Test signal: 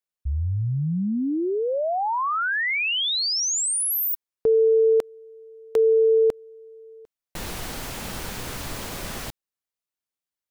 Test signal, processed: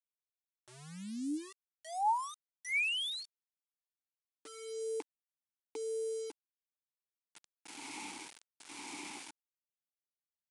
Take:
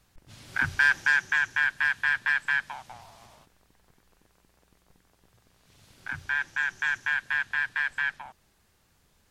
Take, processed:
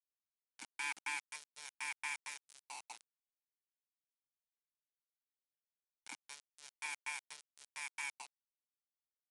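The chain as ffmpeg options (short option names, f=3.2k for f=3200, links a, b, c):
-filter_complex "[0:a]tremolo=f=1:d=0.85,asplit=3[a][b][c];[a]bandpass=f=300:t=q:w=8,volume=0dB[d];[b]bandpass=f=870:t=q:w=8,volume=-6dB[e];[c]bandpass=f=2.24k:t=q:w=8,volume=-9dB[f];[d][e][f]amix=inputs=3:normalize=0,aeval=exprs='val(0)*gte(abs(val(0)),0.00237)':c=same,aemphasis=mode=production:type=riaa,aresample=22050,aresample=44100,volume=4dB"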